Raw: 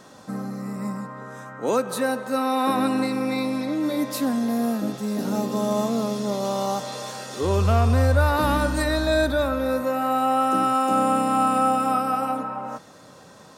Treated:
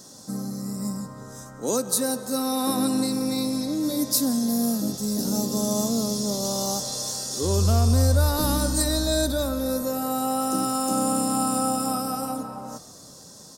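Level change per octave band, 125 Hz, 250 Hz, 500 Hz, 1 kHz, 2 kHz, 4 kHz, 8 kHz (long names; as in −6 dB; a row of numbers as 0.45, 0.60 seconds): 0.0, −0.5, −4.0, −7.0, −9.5, +4.5, +11.0 decibels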